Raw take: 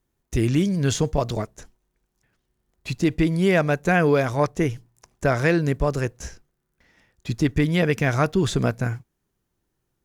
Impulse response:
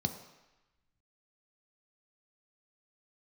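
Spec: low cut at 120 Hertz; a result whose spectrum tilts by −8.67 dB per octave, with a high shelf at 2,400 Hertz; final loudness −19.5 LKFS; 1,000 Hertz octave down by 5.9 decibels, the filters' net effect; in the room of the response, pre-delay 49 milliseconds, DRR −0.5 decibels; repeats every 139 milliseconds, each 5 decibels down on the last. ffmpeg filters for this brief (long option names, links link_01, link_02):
-filter_complex "[0:a]highpass=120,equalizer=frequency=1000:width_type=o:gain=-8,highshelf=frequency=2400:gain=-6.5,aecho=1:1:139|278|417|556|695|834|973:0.562|0.315|0.176|0.0988|0.0553|0.031|0.0173,asplit=2[link_01][link_02];[1:a]atrim=start_sample=2205,adelay=49[link_03];[link_02][link_03]afir=irnorm=-1:irlink=0,volume=-3dB[link_04];[link_01][link_04]amix=inputs=2:normalize=0,volume=-6dB"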